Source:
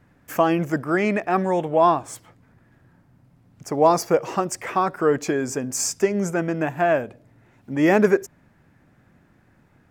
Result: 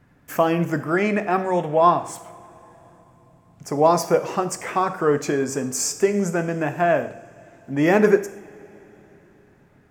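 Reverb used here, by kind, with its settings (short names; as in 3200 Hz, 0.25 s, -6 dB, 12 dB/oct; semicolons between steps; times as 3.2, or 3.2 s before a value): two-slope reverb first 0.56 s, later 4 s, from -20 dB, DRR 8 dB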